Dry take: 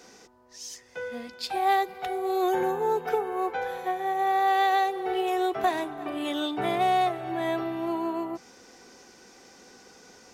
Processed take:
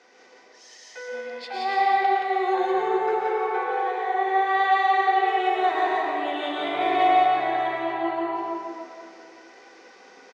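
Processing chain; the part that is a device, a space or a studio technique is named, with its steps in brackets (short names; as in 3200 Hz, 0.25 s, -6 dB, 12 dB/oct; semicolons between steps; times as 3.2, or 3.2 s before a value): station announcement (BPF 420–3700 Hz; bell 2000 Hz +5 dB 0.32 oct; loudspeakers at several distances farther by 41 m -10 dB, 60 m -2 dB; reverb RT60 2.4 s, pre-delay 0.103 s, DRR -3 dB); gain -2.5 dB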